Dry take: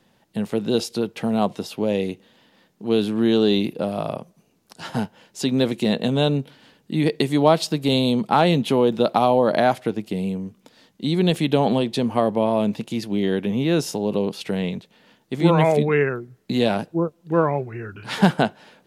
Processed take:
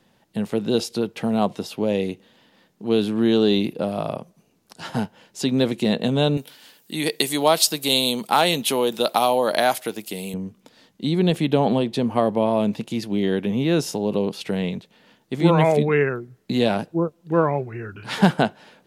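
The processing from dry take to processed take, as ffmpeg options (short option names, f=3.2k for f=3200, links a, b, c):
-filter_complex "[0:a]asettb=1/sr,asplit=3[a][b][c];[a]atrim=end=6.374[d];[b]atrim=start=6.37:end=10.34,asetpts=PTS-STARTPTS,afade=t=in:d=0.004:c=qsin,afade=t=out:st=3.966:d=0.004:c=qsin,aemphasis=mode=production:type=riaa[e];[c]atrim=start=10.336[f];[d][e]acrossfade=d=0.004:c1=hsin:c2=qsin[g];[g][f]acrossfade=d=0.004:c1=qsin:c2=hsin,asettb=1/sr,asplit=3[h][i][j];[h]atrim=end=11.094[k];[i]atrim=start=11.09:end=12.16,asetpts=PTS-STARTPTS,afade=t=in:d=0.004:c=qsin,afade=t=out:st=1.066:d=0.004:c=qsin,equalizer=f=7.3k:w=0.32:g=-3.5[l];[j]atrim=start=12.156[m];[k][l]acrossfade=d=0.004:c1=hsin:c2=qsin[n];[n][m]acrossfade=d=0.004:c1=qsin:c2=hsin"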